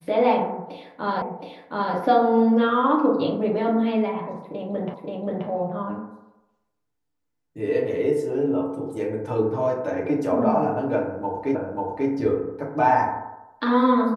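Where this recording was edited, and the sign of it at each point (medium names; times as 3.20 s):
1.22 s: repeat of the last 0.72 s
4.94 s: repeat of the last 0.53 s
11.55 s: repeat of the last 0.54 s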